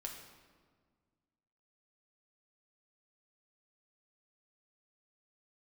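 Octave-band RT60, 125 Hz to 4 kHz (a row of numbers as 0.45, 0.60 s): 2.3, 2.2, 1.8, 1.6, 1.3, 1.1 s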